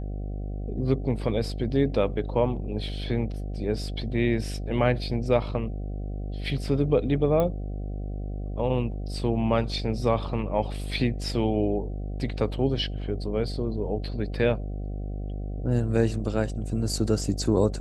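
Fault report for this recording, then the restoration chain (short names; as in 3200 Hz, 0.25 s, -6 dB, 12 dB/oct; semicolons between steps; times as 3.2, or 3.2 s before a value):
buzz 50 Hz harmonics 15 -32 dBFS
7.4 pop -14 dBFS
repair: de-click; de-hum 50 Hz, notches 15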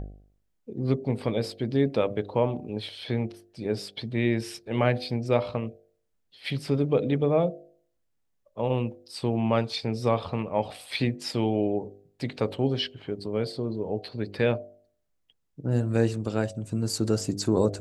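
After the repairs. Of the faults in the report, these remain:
7.4 pop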